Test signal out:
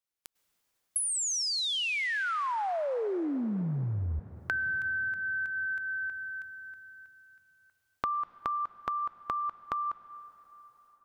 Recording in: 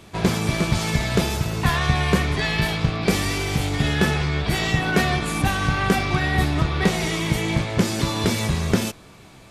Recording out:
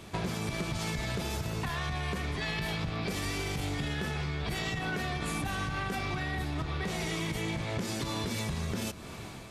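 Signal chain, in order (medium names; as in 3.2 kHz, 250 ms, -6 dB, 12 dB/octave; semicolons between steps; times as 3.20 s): level rider gain up to 11.5 dB; peak limiter -10 dBFS; compression 10:1, threshold -29 dBFS; plate-style reverb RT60 4.8 s, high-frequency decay 0.65×, pre-delay 90 ms, DRR 16.5 dB; trim -1.5 dB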